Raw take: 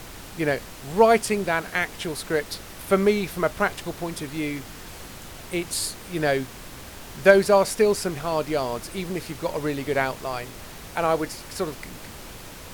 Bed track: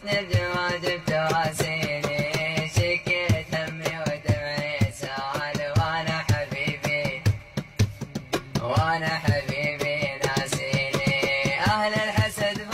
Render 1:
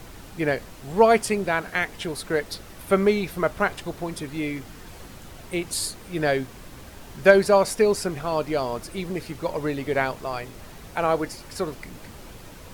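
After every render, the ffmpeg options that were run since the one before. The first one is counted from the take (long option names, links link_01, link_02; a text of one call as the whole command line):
ffmpeg -i in.wav -af "afftdn=noise_reduction=6:noise_floor=-41" out.wav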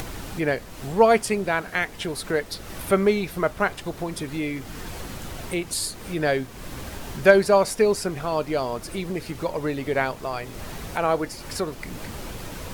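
ffmpeg -i in.wav -af "acompressor=mode=upward:threshold=-25dB:ratio=2.5" out.wav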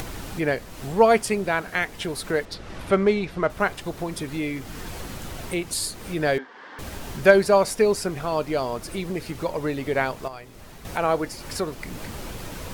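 ffmpeg -i in.wav -filter_complex "[0:a]asettb=1/sr,asplit=3[link_01][link_02][link_03];[link_01]atrim=end=2.454[link_04];[link_02]atrim=start=2.45:end=3.5,asetpts=PTS-STARTPTS,afade=type=in:duration=0.004:curve=qsin,afade=type=out:start_time=1.046:duration=0.004:curve=qsin,adynamicsmooth=sensitivity=2.5:basefreq=5000[link_05];[link_03]atrim=start=3.496[link_06];[link_04][link_05]acrossfade=duration=0.004:curve1=hsin:curve2=qsin[link_07];[link_07][link_06]acrossfade=duration=0.004:curve1=qsin:curve2=hsin,asettb=1/sr,asplit=3[link_08][link_09][link_10];[link_08]atrim=end=6.384[link_11];[link_09]atrim=start=6.38:end=6.79,asetpts=PTS-STARTPTS,afade=type=in:duration=0.004:curve=qsin,afade=type=out:start_time=0.406:duration=0.004:curve=qsin,highpass=frequency=330:width=0.5412,highpass=frequency=330:width=1.3066,equalizer=frequency=350:width_type=q:width=4:gain=-9,equalizer=frequency=620:width_type=q:width=4:gain=-9,equalizer=frequency=900:width_type=q:width=4:gain=5,equalizer=frequency=1700:width_type=q:width=4:gain=8,equalizer=frequency=2500:width_type=q:width=4:gain=-9,equalizer=frequency=3900:width_type=q:width=4:gain=-6,lowpass=frequency=3900:width=0.5412,lowpass=frequency=3900:width=1.3066[link_12];[link_10]atrim=start=6.786[link_13];[link_11][link_12]acrossfade=duration=0.004:curve1=hsin:curve2=qsin[link_14];[link_14][link_13]acrossfade=duration=0.004:curve1=qsin:curve2=hsin,asplit=3[link_15][link_16][link_17];[link_15]atrim=end=10.282[link_18];[link_16]atrim=start=10.278:end=10.852,asetpts=PTS-STARTPTS,volume=-9dB[link_19];[link_17]atrim=start=10.848[link_20];[link_18][link_19]acrossfade=duration=0.004:curve1=hsin:curve2=hsin[link_21];[link_21][link_20]acrossfade=duration=0.004:curve1=hsin:curve2=hsin" out.wav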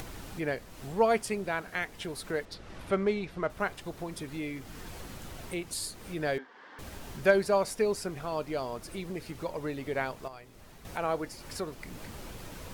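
ffmpeg -i in.wav -af "volume=-8.5dB" out.wav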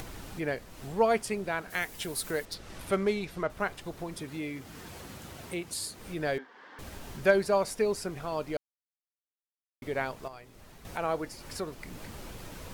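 ffmpeg -i in.wav -filter_complex "[0:a]asettb=1/sr,asplit=3[link_01][link_02][link_03];[link_01]atrim=end=1.704[link_04];[link_02]atrim=start=1.7:end=3.43,asetpts=PTS-STARTPTS,afade=type=in:duration=0.004:curve=qsin,afade=type=out:start_time=1.726:duration=0.004:curve=qsin,aemphasis=mode=production:type=50kf[link_05];[link_03]atrim=start=3.426[link_06];[link_04][link_05]acrossfade=duration=0.004:curve1=hsin:curve2=qsin[link_07];[link_07][link_06]acrossfade=duration=0.004:curve1=qsin:curve2=hsin,asettb=1/sr,asplit=3[link_08][link_09][link_10];[link_08]atrim=end=4.174[link_11];[link_09]atrim=start=4.17:end=5.99,asetpts=PTS-STARTPTS,afade=type=in:duration=0.004:curve=qsin,afade=type=out:start_time=1.816:duration=0.004:curve=qsin,highpass=70[link_12];[link_10]atrim=start=5.986[link_13];[link_11][link_12]acrossfade=duration=0.004:curve1=hsin:curve2=qsin[link_14];[link_14][link_13]acrossfade=duration=0.004:curve1=qsin:curve2=hsin,asplit=3[link_15][link_16][link_17];[link_15]atrim=end=8.57,asetpts=PTS-STARTPTS,afade=type=out:start_time=8.566:duration=0.004:curve=hsin[link_18];[link_16]atrim=start=8.57:end=9.82,asetpts=PTS-STARTPTS,volume=0[link_19];[link_17]atrim=start=9.82,asetpts=PTS-STARTPTS,afade=type=in:duration=0.004:curve=hsin[link_20];[link_18][link_19][link_20]concat=n=3:v=0:a=1" out.wav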